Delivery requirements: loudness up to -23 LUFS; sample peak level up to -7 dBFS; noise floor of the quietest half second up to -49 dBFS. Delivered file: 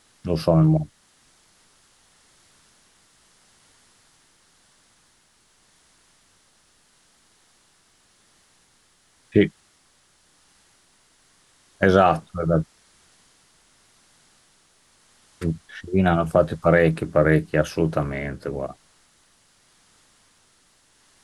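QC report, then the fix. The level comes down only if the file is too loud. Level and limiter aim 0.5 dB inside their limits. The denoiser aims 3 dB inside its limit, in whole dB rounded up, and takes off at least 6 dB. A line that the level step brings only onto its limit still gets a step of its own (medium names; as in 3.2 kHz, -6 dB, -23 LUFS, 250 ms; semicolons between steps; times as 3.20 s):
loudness -21.5 LUFS: fail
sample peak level -4.5 dBFS: fail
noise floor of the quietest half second -61 dBFS: pass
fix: trim -2 dB; peak limiter -7.5 dBFS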